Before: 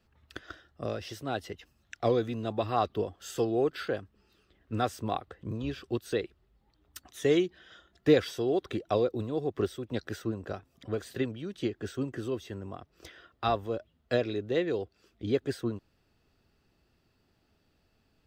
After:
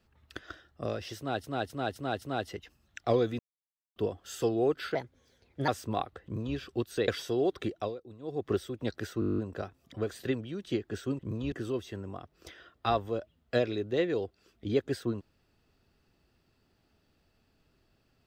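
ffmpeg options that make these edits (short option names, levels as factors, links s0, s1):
-filter_complex "[0:a]asplit=23[s0][s1][s2][s3][s4][s5][s6][s7][s8][s9][s10][s11][s12][s13][s14][s15][s16][s17][s18][s19][s20][s21][s22];[s0]atrim=end=1.442[s23];[s1]atrim=start=1.178:end=1.442[s24];[s2]atrim=start=1.178:end=1.442[s25];[s3]atrim=start=1.178:end=1.442[s26];[s4]atrim=start=1.178:end=2.35,asetpts=PTS-STARTPTS,afade=t=out:st=1.168:d=0.004:c=hsin[s27];[s5]atrim=start=2.35:end=2.92,asetpts=PTS-STARTPTS,volume=0[s28];[s6]atrim=start=2.92:end=3.914,asetpts=PTS-STARTPTS,afade=t=in:d=0.004:c=hsin[s29];[s7]atrim=start=3.91:end=4.83,asetpts=PTS-STARTPTS,asetrate=55566,aresample=44100[s30];[s8]atrim=start=4.826:end=6.232[s31];[s9]atrim=start=8.168:end=9.04,asetpts=PTS-STARTPTS,afade=t=out:st=0.612:d=0.26:silence=0.16788[s32];[s10]atrim=start=9.04:end=9.28,asetpts=PTS-STARTPTS,volume=0.168[s33];[s11]atrim=start=9.28:end=10.312,asetpts=PTS-STARTPTS,afade=t=in:d=0.26:silence=0.16788[s34];[s12]atrim=start=10.288:end=10.312[s35];[s13]atrim=start=10.288:end=10.312[s36];[s14]atrim=start=10.288:end=10.312[s37];[s15]atrim=start=10.288:end=10.312[s38];[s16]atrim=start=10.288:end=10.312[s39];[s17]atrim=start=10.288:end=10.312[s40];[s18]atrim=start=10.288:end=10.312[s41];[s19]atrim=start=10.288:end=10.312[s42];[s20]atrim=start=10.288:end=12.102[s43];[s21]atrim=start=5.388:end=5.722[s44];[s22]atrim=start=12.098[s45];[s23][s24]acrossfade=d=0.004:c1=hsin:c2=hsin[s46];[s46][s25]acrossfade=d=0.004:c1=hsin:c2=hsin[s47];[s47][s26]acrossfade=d=0.004:c1=hsin:c2=hsin[s48];[s27][s28][s29]concat=n=3:v=0:a=1[s49];[s48][s49]acrossfade=d=0.004:c1=hsin:c2=hsin[s50];[s50][s30]acrossfade=d=0.004:c1=hsin:c2=hsin[s51];[s51][s31]acrossfade=d=0.004:c1=hsin:c2=hsin[s52];[s32][s33][s34]concat=n=3:v=0:a=1[s53];[s52][s53]acrossfade=d=0.004:c1=hsin:c2=hsin[s54];[s54][s35]acrossfade=d=0.004:c1=hsin:c2=hsin[s55];[s55][s36]acrossfade=d=0.004:c1=hsin:c2=hsin[s56];[s56][s37]acrossfade=d=0.004:c1=hsin:c2=hsin[s57];[s57][s38]acrossfade=d=0.004:c1=hsin:c2=hsin[s58];[s58][s39]acrossfade=d=0.004:c1=hsin:c2=hsin[s59];[s59][s40]acrossfade=d=0.004:c1=hsin:c2=hsin[s60];[s60][s41]acrossfade=d=0.004:c1=hsin:c2=hsin[s61];[s61][s42]acrossfade=d=0.004:c1=hsin:c2=hsin[s62];[s62][s43]acrossfade=d=0.004:c1=hsin:c2=hsin[s63];[s63][s44]acrossfade=d=0.004:c1=hsin:c2=hsin[s64];[s64][s45]acrossfade=d=0.004:c1=hsin:c2=hsin"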